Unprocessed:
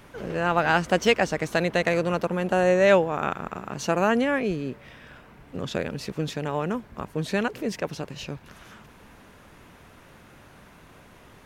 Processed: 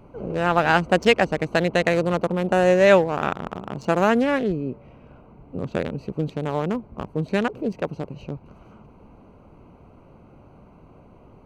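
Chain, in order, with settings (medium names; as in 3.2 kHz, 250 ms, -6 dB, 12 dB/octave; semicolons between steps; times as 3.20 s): local Wiener filter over 25 samples; trim +3.5 dB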